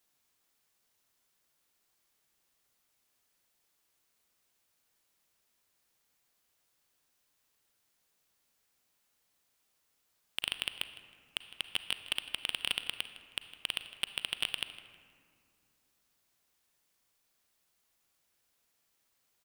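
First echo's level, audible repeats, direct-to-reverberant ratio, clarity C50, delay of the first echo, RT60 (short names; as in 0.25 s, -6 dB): -18.0 dB, 1, 10.0 dB, 10.5 dB, 0.158 s, 2.3 s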